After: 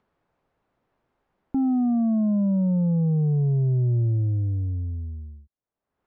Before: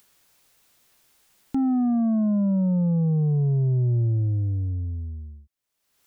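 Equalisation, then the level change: low-pass 1 kHz 12 dB/octave; 0.0 dB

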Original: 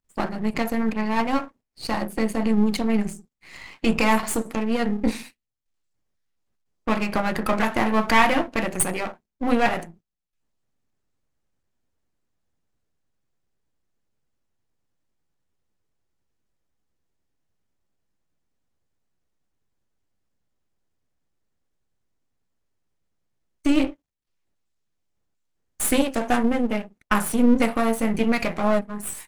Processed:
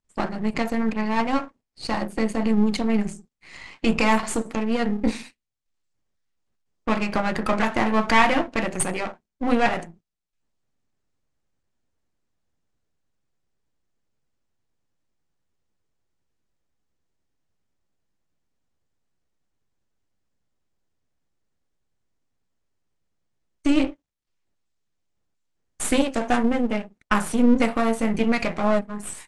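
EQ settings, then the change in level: low-pass 9.1 kHz 24 dB/octave; 0.0 dB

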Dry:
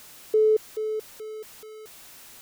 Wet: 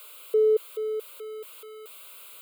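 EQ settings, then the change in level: high-pass 440 Hz 12 dB/octave; static phaser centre 1.2 kHz, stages 8; +3.0 dB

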